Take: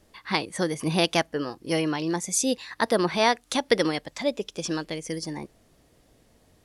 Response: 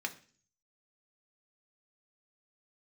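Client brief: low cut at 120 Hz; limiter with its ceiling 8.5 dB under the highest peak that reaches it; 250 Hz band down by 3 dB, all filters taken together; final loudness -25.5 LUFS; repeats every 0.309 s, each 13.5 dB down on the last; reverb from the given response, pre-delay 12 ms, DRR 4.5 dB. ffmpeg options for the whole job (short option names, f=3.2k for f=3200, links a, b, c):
-filter_complex "[0:a]highpass=120,equalizer=f=250:t=o:g=-4,alimiter=limit=-14dB:level=0:latency=1,aecho=1:1:309|618:0.211|0.0444,asplit=2[a][b];[1:a]atrim=start_sample=2205,adelay=12[c];[b][c]afir=irnorm=-1:irlink=0,volume=-7dB[d];[a][d]amix=inputs=2:normalize=0,volume=2.5dB"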